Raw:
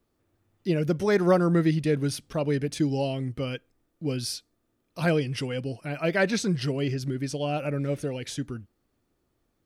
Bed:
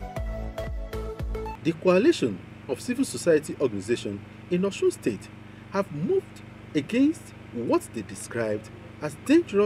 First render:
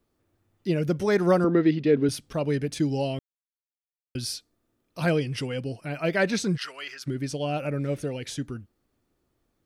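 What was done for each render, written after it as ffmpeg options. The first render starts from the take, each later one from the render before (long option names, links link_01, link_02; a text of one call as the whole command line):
ffmpeg -i in.wav -filter_complex "[0:a]asettb=1/sr,asplit=3[link_01][link_02][link_03];[link_01]atrim=end=1.444[link_04];[link_02]atrim=start=1.44:end=2.09,asetpts=PTS-STARTPTS,afade=type=in:duration=0.004:curve=qsin,afade=type=out:start_time=0.646:duration=0.004:curve=qsin,highpass=110,equalizer=frequency=170:width_type=q:width=4:gain=-6,equalizer=frequency=250:width_type=q:width=4:gain=10,equalizer=frequency=410:width_type=q:width=4:gain=8,lowpass=frequency=4400:width=0.5412,lowpass=frequency=4400:width=1.3066[link_05];[link_03]atrim=start=2.086[link_06];[link_04][link_05]acrossfade=duration=0.004:curve1=hsin:curve2=qsin[link_07];[link_07][link_06]acrossfade=duration=0.004:curve1=qsin:curve2=hsin,asplit=3[link_08][link_09][link_10];[link_08]afade=type=out:start_time=6.56:duration=0.02[link_11];[link_09]highpass=frequency=1300:width_type=q:width=2.4,afade=type=in:start_time=6.56:duration=0.02,afade=type=out:start_time=7.06:duration=0.02[link_12];[link_10]afade=type=in:start_time=7.06:duration=0.02[link_13];[link_11][link_12][link_13]amix=inputs=3:normalize=0,asplit=3[link_14][link_15][link_16];[link_14]atrim=end=3.19,asetpts=PTS-STARTPTS,afade=type=out:start_time=3.186:duration=0.004:curve=hsin[link_17];[link_15]atrim=start=3.19:end=4.15,asetpts=PTS-STARTPTS,volume=0[link_18];[link_16]atrim=start=4.15,asetpts=PTS-STARTPTS,afade=type=in:duration=0.004:curve=hsin[link_19];[link_17][link_18][link_19]concat=n=3:v=0:a=1" out.wav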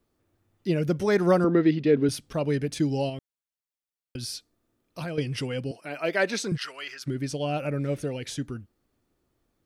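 ffmpeg -i in.wav -filter_complex "[0:a]asettb=1/sr,asplit=3[link_01][link_02][link_03];[link_01]atrim=end=3.094[link_04];[link_02]atrim=start=3.09:end=5.18,asetpts=PTS-STARTPTS,afade=type=in:duration=0.004:curve=qsin,afade=type=out:start_time=2.086:duration=0.004:curve=qsin,acompressor=threshold=-30dB:ratio=6:attack=3.2:release=140:knee=1:detection=peak[link_05];[link_03]atrim=start=5.176[link_06];[link_04][link_05]acrossfade=duration=0.004:curve1=hsin:curve2=qsin[link_07];[link_07][link_06]acrossfade=duration=0.004:curve1=qsin:curve2=hsin,asettb=1/sr,asplit=3[link_08][link_09][link_10];[link_08]atrim=end=5.714[link_11];[link_09]atrim=start=5.71:end=6.52,asetpts=PTS-STARTPTS,afade=type=in:duration=0.004:curve=qsin,afade=type=out:start_time=0.806:duration=0.004:curve=qsin,highpass=310[link_12];[link_10]atrim=start=6.516[link_13];[link_11][link_12]acrossfade=duration=0.004:curve1=hsin:curve2=qsin[link_14];[link_14][link_13]acrossfade=duration=0.004:curve1=qsin:curve2=hsin" out.wav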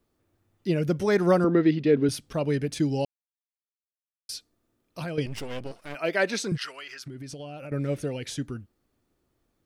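ffmpeg -i in.wav -filter_complex "[0:a]asettb=1/sr,asplit=3[link_01][link_02][link_03];[link_01]atrim=end=5.264[link_04];[link_02]atrim=start=5.26:end=5.95,asetpts=PTS-STARTPTS,afade=type=in:duration=0.004:curve=qsin,afade=type=out:start_time=0.686:duration=0.004:curve=qsin,aeval=exprs='max(val(0),0)':channel_layout=same[link_05];[link_03]atrim=start=5.946[link_06];[link_04][link_05]acrossfade=duration=0.004:curve1=hsin:curve2=qsin[link_07];[link_07][link_06]acrossfade=duration=0.004:curve1=qsin:curve2=hsin,asettb=1/sr,asplit=3[link_08][link_09][link_10];[link_08]atrim=end=6.684[link_11];[link_09]atrim=start=6.68:end=7.72,asetpts=PTS-STARTPTS,afade=type=in:duration=0.004:curve=qsin,afade=type=out:start_time=1.036:duration=0.004:curve=qsin,acompressor=threshold=-36dB:ratio=6:attack=3.2:release=140:knee=1:detection=peak[link_12];[link_10]atrim=start=7.716[link_13];[link_11][link_12]acrossfade=duration=0.004:curve1=hsin:curve2=qsin[link_14];[link_14][link_13]acrossfade=duration=0.004:curve1=qsin:curve2=hsin,asplit=3[link_15][link_16][link_17];[link_15]atrim=end=3.05,asetpts=PTS-STARTPTS,afade=type=out:start_time=3.046:duration=0.004:curve=hsin[link_18];[link_16]atrim=start=3.05:end=4.29,asetpts=PTS-STARTPTS,volume=0[link_19];[link_17]atrim=start=4.29,asetpts=PTS-STARTPTS,afade=type=in:duration=0.004:curve=hsin[link_20];[link_18][link_19][link_20]concat=n=3:v=0:a=1" out.wav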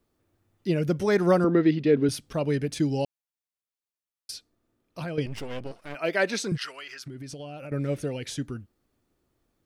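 ffmpeg -i in.wav -filter_complex "[0:a]asettb=1/sr,asplit=3[link_01][link_02][link_03];[link_01]atrim=end=4.314[link_04];[link_02]atrim=start=4.31:end=6.02,asetpts=PTS-STARTPTS,afade=type=in:duration=0.004:curve=qsin,afade=type=out:start_time=1.706:duration=0.004:curve=qsin,highshelf=frequency=4300:gain=-5[link_05];[link_03]atrim=start=6.016[link_06];[link_04][link_05]acrossfade=duration=0.004:curve1=hsin:curve2=qsin[link_07];[link_07][link_06]acrossfade=duration=0.004:curve1=qsin:curve2=hsin" out.wav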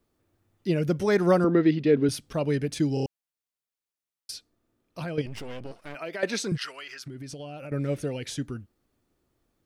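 ffmpeg -i in.wav -filter_complex "[0:a]asettb=1/sr,asplit=3[link_01][link_02][link_03];[link_01]atrim=end=5.214[link_04];[link_02]atrim=start=5.21:end=6.23,asetpts=PTS-STARTPTS,afade=type=in:duration=0.004:curve=qsin,afade=type=out:start_time=1.016:duration=0.004:curve=qsin,acompressor=threshold=-31dB:ratio=6:attack=3.2:release=140:knee=1:detection=peak[link_05];[link_03]atrim=start=6.226[link_06];[link_04][link_05]acrossfade=duration=0.004:curve1=hsin:curve2=qsin[link_07];[link_07][link_06]acrossfade=duration=0.004:curve1=qsin:curve2=hsin,asplit=5[link_08][link_09][link_10][link_11][link_12];[link_08]atrim=end=2.972[link_13];[link_09]atrim=start=2.938:end=2.972[link_14];[link_10]atrim=start=2.938:end=2.972[link_15];[link_11]atrim=start=2.938:end=2.972[link_16];[link_12]atrim=start=3.058[link_17];[link_13][link_14]acrossfade=duration=0.004:curve1=hsin:curve2=hsin[link_18];[link_18][link_15]acrossfade=duration=0.004:curve1=hsin:curve2=hsin[link_19];[link_19][link_16]acrossfade=duration=0.004:curve1=hsin:curve2=hsin[link_20];[link_20][link_17]acrossfade=duration=0.004:curve1=hsin:curve2=hsin" out.wav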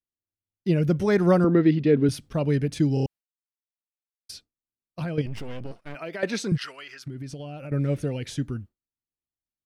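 ffmpeg -i in.wav -af "agate=range=-33dB:threshold=-40dB:ratio=3:detection=peak,bass=frequency=250:gain=6,treble=frequency=4000:gain=-3" out.wav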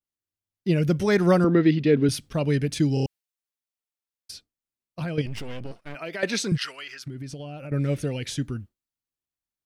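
ffmpeg -i in.wav -af "adynamicequalizer=threshold=0.00794:dfrequency=1700:dqfactor=0.7:tfrequency=1700:tqfactor=0.7:attack=5:release=100:ratio=0.375:range=3:mode=boostabove:tftype=highshelf" out.wav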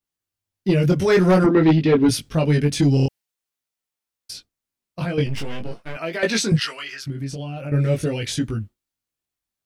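ffmpeg -i in.wav -af "flanger=delay=18:depth=3.9:speed=0.48,aeval=exprs='0.335*sin(PI/2*1.78*val(0)/0.335)':channel_layout=same" out.wav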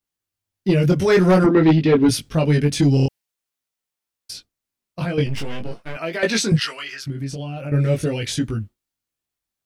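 ffmpeg -i in.wav -af "volume=1dB" out.wav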